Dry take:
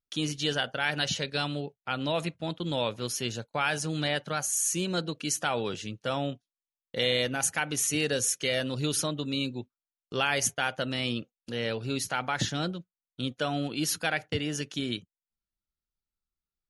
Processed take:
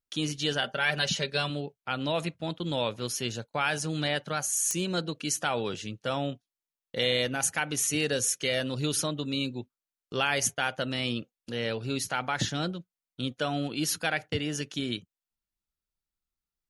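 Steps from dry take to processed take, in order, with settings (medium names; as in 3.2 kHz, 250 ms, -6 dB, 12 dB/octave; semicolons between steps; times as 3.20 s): 0.62–1.50 s: comb 5.1 ms, depth 60%; clicks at 4.71 s, -14 dBFS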